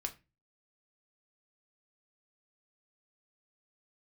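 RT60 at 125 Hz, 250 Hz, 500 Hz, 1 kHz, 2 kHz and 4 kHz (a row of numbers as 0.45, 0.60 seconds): 0.50, 0.40, 0.30, 0.25, 0.30, 0.20 seconds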